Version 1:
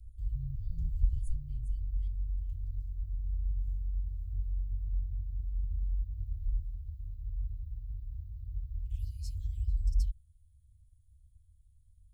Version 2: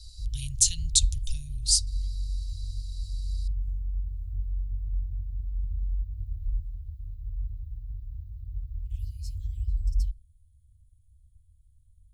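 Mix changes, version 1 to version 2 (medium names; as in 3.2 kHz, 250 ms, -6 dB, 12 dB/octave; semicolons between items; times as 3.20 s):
speech: remove steep low-pass 560 Hz; reverb: on, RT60 0.40 s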